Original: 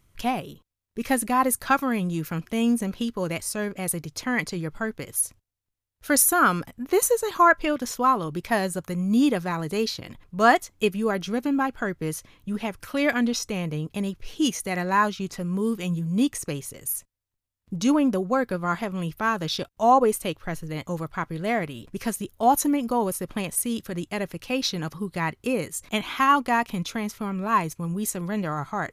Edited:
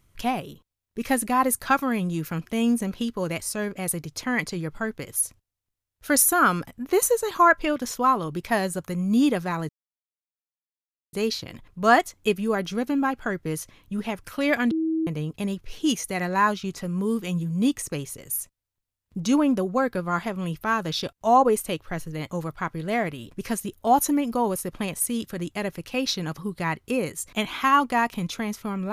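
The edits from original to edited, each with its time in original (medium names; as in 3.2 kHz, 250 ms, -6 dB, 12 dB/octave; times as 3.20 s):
9.69 s: insert silence 1.44 s
13.27–13.63 s: bleep 321 Hz -21.5 dBFS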